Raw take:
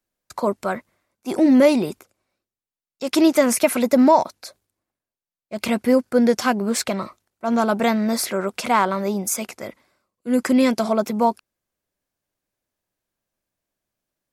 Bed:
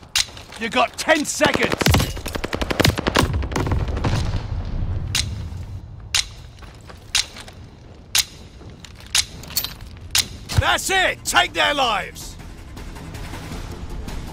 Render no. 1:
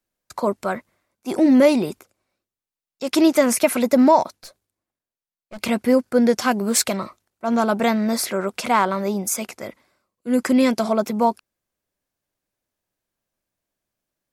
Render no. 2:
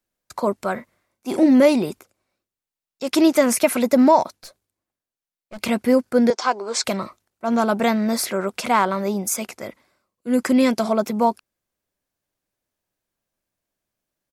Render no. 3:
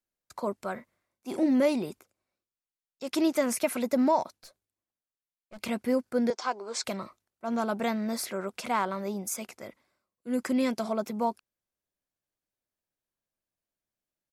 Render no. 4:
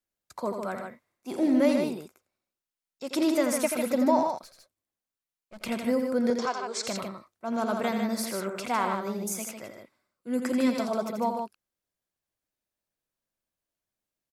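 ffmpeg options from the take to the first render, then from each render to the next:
-filter_complex "[0:a]asettb=1/sr,asplit=3[s0][s1][s2];[s0]atrim=end=4.364[s3];[s1]atrim=start=4.36:end=5.59,asetpts=PTS-STARTPTS,afade=t=in:d=0.004:c=qsin,afade=t=out:st=1.226:d=0.004:c=qsin,aeval=exprs='(tanh(39.8*val(0)+0.65)-tanh(0.65))/39.8':c=same[s4];[s2]atrim=start=5.586[s5];[s3][s4]acrossfade=d=0.004:c1=hsin:c2=qsin[s6];[s6][s5]acrossfade=d=0.004:c1=qsin:c2=hsin,asettb=1/sr,asplit=3[s7][s8][s9];[s7]atrim=end=6.514[s10];[s8]atrim=start=6.51:end=6.97,asetpts=PTS-STARTPTS,afade=t=in:d=0.004:c=qsin,afade=t=out:st=0.456:d=0.004:c=qsin,highshelf=f=5300:g=9.5[s11];[s9]atrim=start=6.966[s12];[s10][s11]acrossfade=d=0.004:c1=hsin:c2=qsin[s13];[s13][s12]acrossfade=d=0.004:c1=qsin:c2=hsin"
-filter_complex "[0:a]asplit=3[s0][s1][s2];[s0]afade=t=out:st=0.76:d=0.02[s3];[s1]asplit=2[s4][s5];[s5]adelay=38,volume=0.398[s6];[s4][s6]amix=inputs=2:normalize=0,afade=t=in:st=0.76:d=0.02,afade=t=out:st=1.44:d=0.02[s7];[s2]afade=t=in:st=1.44:d=0.02[s8];[s3][s7][s8]amix=inputs=3:normalize=0,asettb=1/sr,asplit=3[s9][s10][s11];[s9]atrim=end=6.304[s12];[s10]atrim=start=6.3:end=6.84,asetpts=PTS-STARTPTS,afade=t=in:d=0.004:c=qsin,afade=t=out:st=0.536:d=0.004:c=qsin,highpass=f=370:w=0.5412,highpass=f=370:w=1.3066,equalizer=f=580:t=q:w=4:g=-3,equalizer=f=950:t=q:w=4:g=5,equalizer=f=1800:t=q:w=4:g=-6,equalizer=f=2800:t=q:w=4:g=-6,lowpass=f=6500:w=0.5412,lowpass=f=6500:w=1.3066[s13];[s11]atrim=start=6.836[s14];[s12][s13]acrossfade=d=0.004:c1=hsin:c2=qsin[s15];[s15][s14]acrossfade=d=0.004:c1=qsin:c2=hsin"
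-af "volume=0.316"
-af "aecho=1:1:84.55|151.6:0.447|0.501"

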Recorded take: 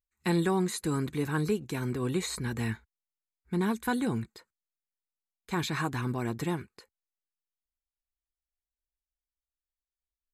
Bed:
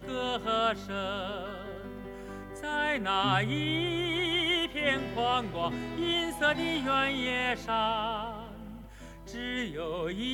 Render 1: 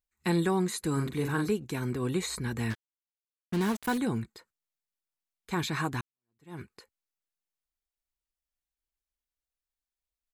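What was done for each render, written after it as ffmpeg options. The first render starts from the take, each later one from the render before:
-filter_complex "[0:a]asplit=3[s0][s1][s2];[s0]afade=t=out:st=0.96:d=0.02[s3];[s1]asplit=2[s4][s5];[s5]adelay=43,volume=0.531[s6];[s4][s6]amix=inputs=2:normalize=0,afade=t=in:st=0.96:d=0.02,afade=t=out:st=1.46:d=0.02[s7];[s2]afade=t=in:st=1.46:d=0.02[s8];[s3][s7][s8]amix=inputs=3:normalize=0,asettb=1/sr,asplit=3[s9][s10][s11];[s9]atrim=end=2.704[s12];[s10]atrim=start=2.7:end=3.98,asetpts=PTS-STARTPTS,afade=t=in:d=0.004:c=qsin,afade=t=out:st=1.276:d=0.004:c=qsin,acrusher=bits=5:mix=0:aa=0.5[s13];[s11]atrim=start=3.976[s14];[s12][s13]acrossfade=d=0.004:c1=hsin:c2=qsin[s15];[s15][s14]acrossfade=d=0.004:c1=qsin:c2=hsin,asplit=2[s16][s17];[s16]atrim=end=6.01,asetpts=PTS-STARTPTS,afade=t=out:st=6.006:d=0.004:c=hsin[s18];[s17]atrim=start=6.01,asetpts=PTS-STARTPTS,afade=t=in:d=0.59:c=exp[s19];[s18][s19]concat=n=2:v=0:a=1"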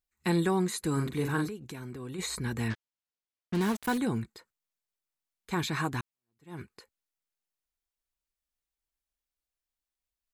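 -filter_complex "[0:a]asplit=3[s0][s1][s2];[s0]afade=t=out:st=1.47:d=0.02[s3];[s1]acompressor=threshold=0.00891:ratio=2.5:attack=3.2:release=140:knee=1:detection=peak,afade=t=in:st=1.47:d=0.02,afade=t=out:st=2.18:d=0.02[s4];[s2]afade=t=in:st=2.18:d=0.02[s5];[s3][s4][s5]amix=inputs=3:normalize=0,asettb=1/sr,asplit=3[s6][s7][s8];[s6]atrim=end=2.684[s9];[s7]atrim=start=2.68:end=3.55,asetpts=PTS-STARTPTS,afade=t=in:d=0.004:c=qsin,afade=t=out:st=0.866:d=0.004:c=qsin,lowpass=6000[s10];[s8]atrim=start=3.546[s11];[s9][s10]acrossfade=d=0.004:c1=hsin:c2=qsin[s12];[s12][s11]acrossfade=d=0.004:c1=qsin:c2=hsin"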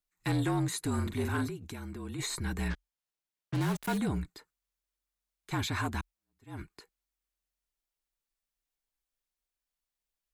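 -af "afreqshift=-45,asoftclip=type=tanh:threshold=0.0708"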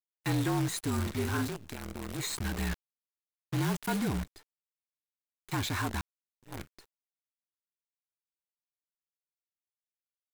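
-af "acrusher=bits=7:dc=4:mix=0:aa=0.000001"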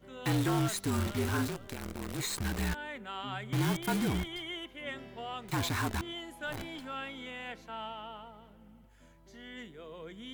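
-filter_complex "[1:a]volume=0.237[s0];[0:a][s0]amix=inputs=2:normalize=0"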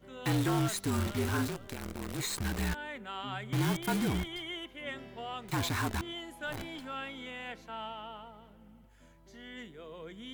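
-af anull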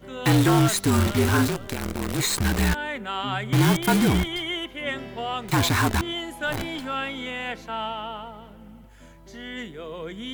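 -af "volume=3.55"

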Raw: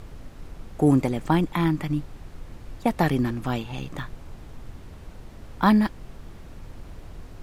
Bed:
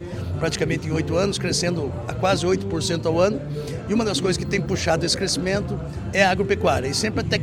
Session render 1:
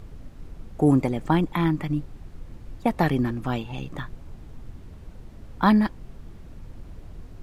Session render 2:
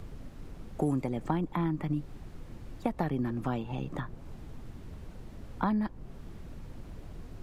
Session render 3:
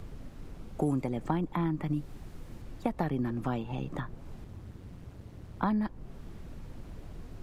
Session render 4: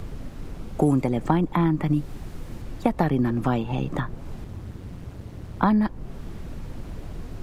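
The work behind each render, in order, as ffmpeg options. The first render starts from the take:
-af "afftdn=nr=6:nf=-43"
-filter_complex "[0:a]acrossover=split=120|1400[s0][s1][s2];[s0]acompressor=threshold=0.00891:ratio=4[s3];[s1]acompressor=threshold=0.0355:ratio=4[s4];[s2]acompressor=threshold=0.00251:ratio=4[s5];[s3][s4][s5]amix=inputs=3:normalize=0"
-filter_complex "[0:a]asettb=1/sr,asplit=3[s0][s1][s2];[s0]atrim=end=0.594[s3];[s1]atrim=start=0.59:end=0.99,asetpts=PTS-STARTPTS,afade=t=in:d=0.004:c=qsin,afade=t=out:st=0.396:d=0.004:c=qsin,bandreject=f=1800:w=11[s4];[s2]atrim=start=0.986[s5];[s3][s4]acrossfade=d=0.004:c1=hsin:c2=qsin[s6];[s6][s5]acrossfade=d=0.004:c1=qsin:c2=hsin,asettb=1/sr,asplit=3[s7][s8][s9];[s7]atrim=end=1.864[s10];[s8]atrim=start=1.86:end=2.62,asetpts=PTS-STARTPTS,afade=t=in:d=0.004:c=qsin,afade=t=out:st=0.756:d=0.004:c=qsin,highshelf=f=6100:g=5.5[s11];[s9]atrim=start=2.616[s12];[s10][s11]acrossfade=d=0.004:c1=hsin:c2=qsin[s13];[s13][s12]acrossfade=d=0.004:c1=qsin:c2=hsin,asettb=1/sr,asplit=3[s14][s15][s16];[s14]atrim=end=4.444[s17];[s15]atrim=start=4.44:end=5.63,asetpts=PTS-STARTPTS,afade=t=in:d=0.004:c=qsin,afade=t=out:st=1.186:d=0.004:c=qsin,aeval=exprs='val(0)*sin(2*PI*92*n/s)':c=same[s18];[s16]atrim=start=5.626[s19];[s17][s18]acrossfade=d=0.004:c1=hsin:c2=qsin[s20];[s20][s19]acrossfade=d=0.004:c1=qsin:c2=hsin"
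-af "volume=2.82"

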